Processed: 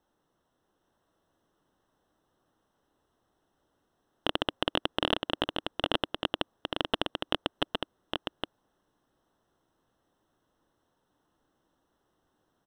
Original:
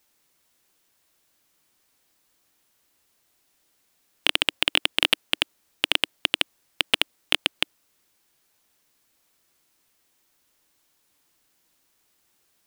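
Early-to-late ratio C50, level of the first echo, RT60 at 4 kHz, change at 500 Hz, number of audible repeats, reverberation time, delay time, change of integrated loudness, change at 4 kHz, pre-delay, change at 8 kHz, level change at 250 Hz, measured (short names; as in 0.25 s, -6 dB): none, -4.5 dB, none, +4.0 dB, 1, none, 0.811 s, -8.5 dB, -9.5 dB, none, -19.5 dB, +4.5 dB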